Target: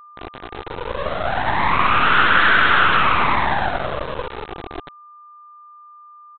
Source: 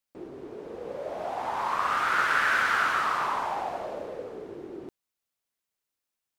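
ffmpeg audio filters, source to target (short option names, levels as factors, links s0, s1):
-af "aeval=exprs='val(0)+0.5*0.02*sgn(val(0))':c=same,afftfilt=real='re*gte(hypot(re,im),0.0631)':imag='im*gte(hypot(re,im),0.0631)':win_size=1024:overlap=0.75,highpass=f=120:p=1,lowshelf=f=430:g=-3.5,bandreject=f=60:t=h:w=6,bandreject=f=120:t=h:w=6,bandreject=f=180:t=h:w=6,bandreject=f=240:t=h:w=6,bandreject=f=300:t=h:w=6,bandreject=f=360:t=h:w=6,acontrast=33,aeval=exprs='0.398*(cos(1*acos(clip(val(0)/0.398,-1,1)))-cos(1*PI/2))+0.0631*(cos(2*acos(clip(val(0)/0.398,-1,1)))-cos(2*PI/2))+0.0708*(cos(8*acos(clip(val(0)/0.398,-1,1)))-cos(8*PI/2))':c=same,aresample=8000,aeval=exprs='val(0)*gte(abs(val(0)),0.0473)':c=same,aresample=44100,aeval=exprs='val(0)+0.00562*sin(2*PI*1200*n/s)':c=same,volume=1.58"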